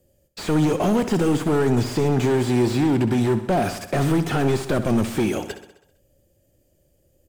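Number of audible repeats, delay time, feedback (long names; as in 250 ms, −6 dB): 6, 65 ms, 60%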